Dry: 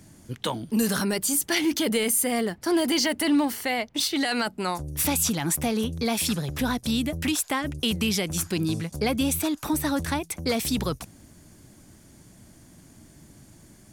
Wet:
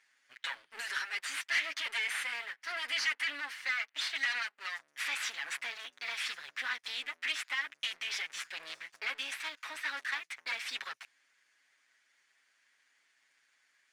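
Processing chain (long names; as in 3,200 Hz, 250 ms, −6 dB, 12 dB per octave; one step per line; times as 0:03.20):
lower of the sound and its delayed copy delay 7.3 ms
four-pole ladder band-pass 2,200 Hz, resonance 45%
leveller curve on the samples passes 1
level +5 dB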